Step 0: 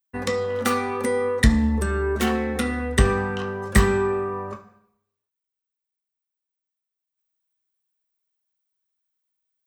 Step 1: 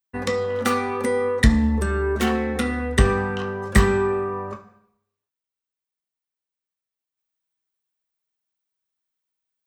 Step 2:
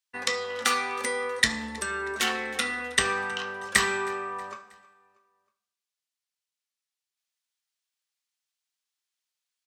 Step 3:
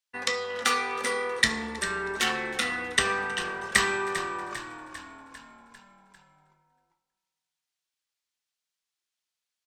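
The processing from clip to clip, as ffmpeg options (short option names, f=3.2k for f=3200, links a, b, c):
-af "highshelf=f=8.3k:g=-5,volume=1dB"
-af "bandpass=f=5k:t=q:w=0.55:csg=0,aecho=1:1:318|636|954:0.075|0.0337|0.0152,volume=5.5dB"
-filter_complex "[0:a]highshelf=f=9.7k:g=-5,asplit=7[a][b][c][d][e][f][g];[b]adelay=398,afreqshift=-40,volume=-11.5dB[h];[c]adelay=796,afreqshift=-80,volume=-16.4dB[i];[d]adelay=1194,afreqshift=-120,volume=-21.3dB[j];[e]adelay=1592,afreqshift=-160,volume=-26.1dB[k];[f]adelay=1990,afreqshift=-200,volume=-31dB[l];[g]adelay=2388,afreqshift=-240,volume=-35.9dB[m];[a][h][i][j][k][l][m]amix=inputs=7:normalize=0"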